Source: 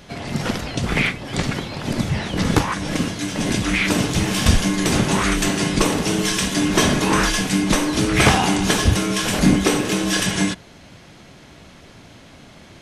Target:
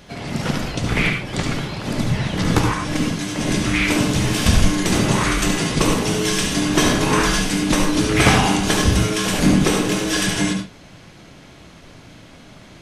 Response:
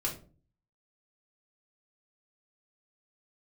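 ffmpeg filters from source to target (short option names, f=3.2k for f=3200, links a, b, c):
-filter_complex "[0:a]asplit=2[a][b];[1:a]atrim=start_sample=2205,atrim=end_sample=3528,adelay=70[c];[b][c]afir=irnorm=-1:irlink=0,volume=-7.5dB[d];[a][d]amix=inputs=2:normalize=0,volume=-1dB"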